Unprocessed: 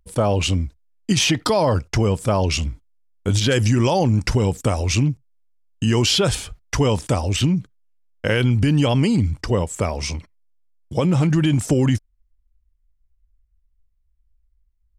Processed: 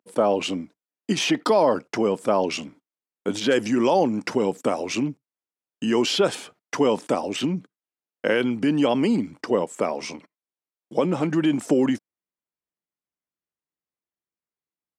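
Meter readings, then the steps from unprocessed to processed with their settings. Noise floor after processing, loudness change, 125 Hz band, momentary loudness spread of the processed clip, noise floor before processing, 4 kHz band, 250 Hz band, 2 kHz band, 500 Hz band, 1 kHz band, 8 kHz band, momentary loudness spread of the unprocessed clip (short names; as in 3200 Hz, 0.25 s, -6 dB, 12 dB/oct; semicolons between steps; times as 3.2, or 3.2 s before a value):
under -85 dBFS, -3.5 dB, -16.5 dB, 12 LU, -65 dBFS, -6.0 dB, -2.0 dB, -3.0 dB, +0.5 dB, 0.0 dB, -8.5 dB, 10 LU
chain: HPF 230 Hz 24 dB/oct; high shelf 2700 Hz -11 dB; gain +1 dB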